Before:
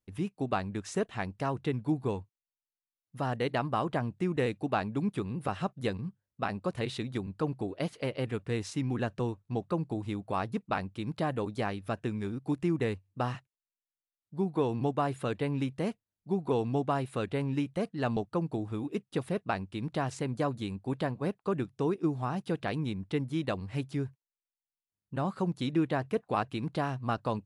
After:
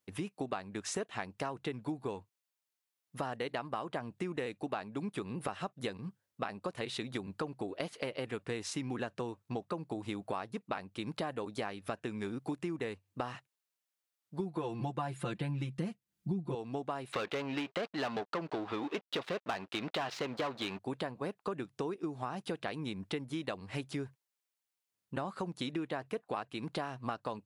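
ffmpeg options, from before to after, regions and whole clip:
-filter_complex "[0:a]asettb=1/sr,asplit=3[a][b][c];[a]atrim=end=14.394[d];[b]atrim=start=14.39:end=16.55,asetpts=PTS-STARTPTS,afade=t=in:d=0.004:c=qsin,afade=t=out:st=2.156:d=0.004:c=qsin,aecho=1:1:5.8:0.98,atrim=end_sample=95256,asubboost=boost=10.5:cutoff=240[e];[c]atrim=start=16.546[f];[d][e]acrossfade=d=0.004:c1=hsin:c2=qsin[g];[g][f]acrossfade=d=0.004:c1=qsin:c2=hsin,asettb=1/sr,asplit=3[h][i][j];[h]atrim=end=17.124[k];[i]atrim=start=17.12:end=20.79,asetpts=PTS-STARTPTS,afade=t=in:d=0.004:c=qsin,afade=t=out:st=3.666:d=0.004:c=qsin,highshelf=f=6.3k:t=q:w=1.5:g=-14,aeval=exprs='sgn(val(0))*max(abs(val(0))-0.00178,0)':c=same,asplit=2[l][m];[m]highpass=f=720:p=1,volume=23dB,asoftclip=type=tanh:threshold=-17dB[n];[l][n]amix=inputs=2:normalize=0,lowpass=f=3.3k:p=1,volume=-6dB[o];[j]atrim=start=20.786[p];[k][o]acrossfade=d=0.004:c1=hsin:c2=qsin[q];[q][p]acrossfade=d=0.004:c1=qsin:c2=hsin,highpass=f=390:p=1,acompressor=threshold=-41dB:ratio=6,volume=6.5dB"

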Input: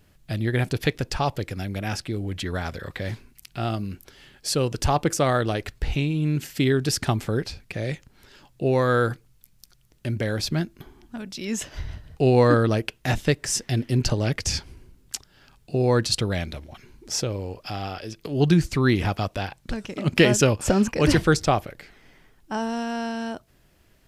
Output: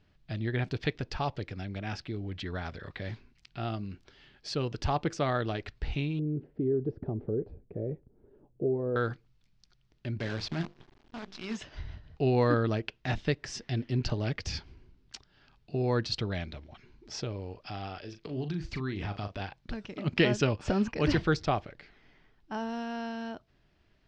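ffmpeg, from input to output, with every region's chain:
-filter_complex "[0:a]asettb=1/sr,asplit=3[a][b][c];[a]atrim=end=6.194[d];[b]atrim=start=6.19:end=8.96,asetpts=PTS-STARTPTS,afade=t=in:d=0.004:c=qsin,afade=t=out:st=2.766:d=0.004:c=qsin,acompressor=threshold=-23dB:ratio=3:attack=3.2:release=140:knee=1:detection=peak,lowpass=f=450:t=q:w=2.8[e];[c]atrim=start=8.956[f];[d][e]acrossfade=d=0.004:c1=hsin:c2=qsin[g];[g][f]acrossfade=d=0.004:c1=qsin:c2=hsin,asettb=1/sr,asplit=3[h][i][j];[h]atrim=end=10.194[k];[i]atrim=start=10.19:end=11.57,asetpts=PTS-STARTPTS,afade=t=in:d=0.004:c=qsin,afade=t=out:st=1.376:d=0.004:c=qsin,bandreject=f=50:t=h:w=6,bandreject=f=100:t=h:w=6,bandreject=f=150:t=h:w=6,bandreject=f=200:t=h:w=6,bandreject=f=250:t=h:w=6,bandreject=f=300:t=h:w=6,bandreject=f=350:t=h:w=6,bandreject=f=400:t=h:w=6,bandreject=f=450:t=h:w=6,bandreject=f=500:t=h:w=6,acrusher=bits=6:dc=4:mix=0:aa=0.000001[l];[j]atrim=start=11.566[m];[k][l]acrossfade=d=0.004:c1=hsin:c2=qsin[n];[n][m]acrossfade=d=0.004:c1=qsin:c2=hsin,asettb=1/sr,asplit=3[o][p][q];[o]atrim=end=17.994[r];[p]atrim=start=17.99:end=19.42,asetpts=PTS-STARTPTS,afade=t=in:d=0.004:c=qsin,afade=t=out:st=1.426:d=0.004:c=qsin,acompressor=threshold=-23dB:ratio=12:attack=3.2:release=140:knee=1:detection=peak,asplit=2[s][t];[t]adelay=39,volume=-9dB[u];[s][u]amix=inputs=2:normalize=0,atrim=end_sample=63063[v];[q]atrim=start=19.416[w];[r][v]acrossfade=d=0.004:c1=hsin:c2=qsin[x];[x][w]acrossfade=d=0.004:c1=qsin:c2=hsin,lowpass=f=5k:w=0.5412,lowpass=f=5k:w=1.3066,bandreject=f=520:w=12,volume=-7.5dB"

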